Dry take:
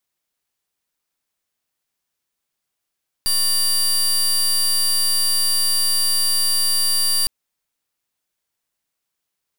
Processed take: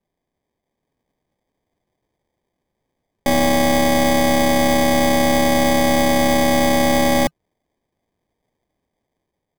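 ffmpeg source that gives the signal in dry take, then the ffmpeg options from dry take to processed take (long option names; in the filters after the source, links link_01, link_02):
-f lavfi -i "aevalsrc='0.126*(2*lt(mod(4700*t,1),0.24)-1)':duration=4.01:sample_rate=44100"
-filter_complex "[0:a]equalizer=frequency=160:width=2.3:gain=11,acrossover=split=940[link_01][link_02];[link_02]dynaudnorm=framelen=510:gausssize=3:maxgain=3.5dB[link_03];[link_01][link_03]amix=inputs=2:normalize=0,acrusher=samples=32:mix=1:aa=0.000001"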